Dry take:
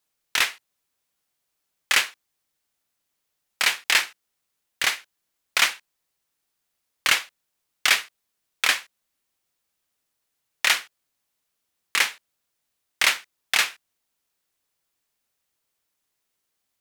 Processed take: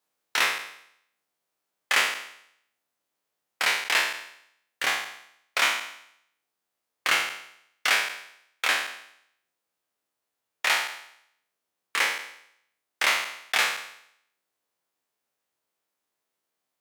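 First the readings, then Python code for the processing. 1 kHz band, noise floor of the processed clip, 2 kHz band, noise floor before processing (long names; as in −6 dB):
+1.5 dB, −84 dBFS, −1.5 dB, −79 dBFS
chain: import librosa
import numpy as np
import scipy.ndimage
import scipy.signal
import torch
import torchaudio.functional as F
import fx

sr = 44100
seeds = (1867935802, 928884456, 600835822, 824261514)

p1 = fx.spec_trails(x, sr, decay_s=0.71)
p2 = fx.highpass(p1, sr, hz=780.0, slope=6)
p3 = fx.tilt_shelf(p2, sr, db=8.0, hz=1200.0)
p4 = fx.rider(p3, sr, range_db=10, speed_s=0.5)
p5 = p3 + (p4 * 10.0 ** (0.5 / 20.0))
y = p5 * 10.0 ** (-6.5 / 20.0)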